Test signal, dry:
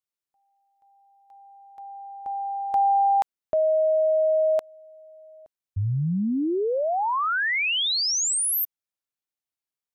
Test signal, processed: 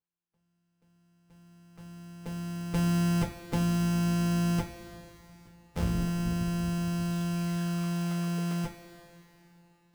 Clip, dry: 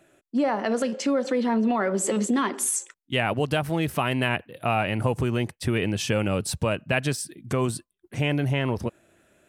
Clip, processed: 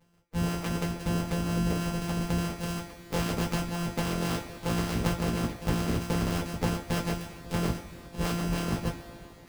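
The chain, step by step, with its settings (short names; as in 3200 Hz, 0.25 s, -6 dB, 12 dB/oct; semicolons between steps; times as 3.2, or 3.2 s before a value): sample sorter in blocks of 256 samples; two-slope reverb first 0.25 s, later 3.2 s, from -19 dB, DRR -3.5 dB; harmonic-percussive split harmonic -13 dB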